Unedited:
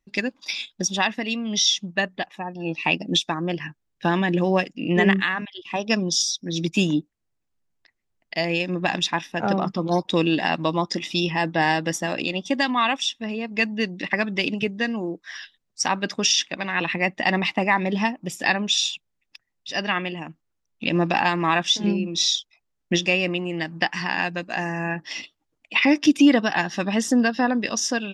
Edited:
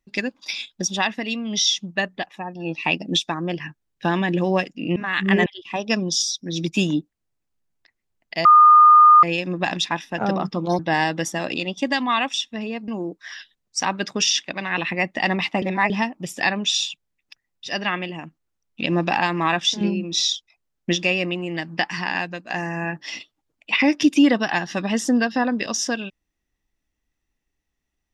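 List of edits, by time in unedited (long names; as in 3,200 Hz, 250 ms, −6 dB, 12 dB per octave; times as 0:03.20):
0:04.96–0:05.46: reverse
0:08.45: insert tone 1,220 Hz −7 dBFS 0.78 s
0:10.01–0:11.47: remove
0:13.56–0:14.91: remove
0:17.65–0:17.93: reverse
0:24.17–0:24.53: fade out, to −7 dB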